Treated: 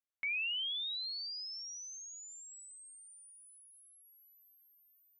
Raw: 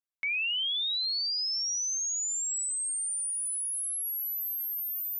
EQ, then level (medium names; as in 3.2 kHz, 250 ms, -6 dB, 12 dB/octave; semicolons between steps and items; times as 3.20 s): low-pass 3.4 kHz 12 dB/octave; -4.5 dB